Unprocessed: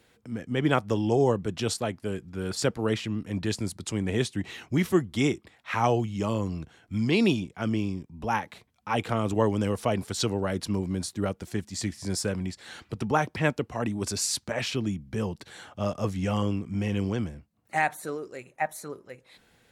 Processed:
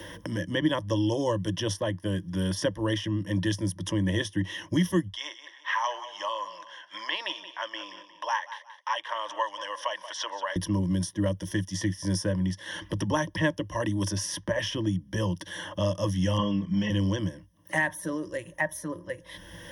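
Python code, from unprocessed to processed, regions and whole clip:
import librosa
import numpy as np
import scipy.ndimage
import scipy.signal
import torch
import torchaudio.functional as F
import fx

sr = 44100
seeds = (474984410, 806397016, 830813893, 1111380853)

y = fx.chain(x, sr, fx.highpass(hz=790.0, slope=24),
    fx.air_absorb(metres=110.0),
    fx.echo_feedback(ms=179, feedback_pct=24, wet_db=-15.5), at=(5.08, 10.56))
y = fx.chain(y, sr, fx.lowpass(hz=3700.0, slope=12),
    fx.comb(ms=4.6, depth=0.99), at=(16.38, 16.9))
y = fx.ripple_eq(y, sr, per_octave=1.2, db=18)
y = fx.band_squash(y, sr, depth_pct=70)
y = y * 10.0 ** (-3.0 / 20.0)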